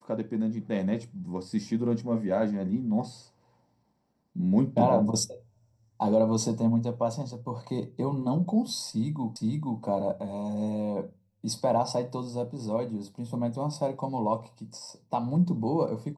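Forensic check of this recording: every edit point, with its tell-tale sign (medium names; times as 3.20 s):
9.36 s: repeat of the last 0.47 s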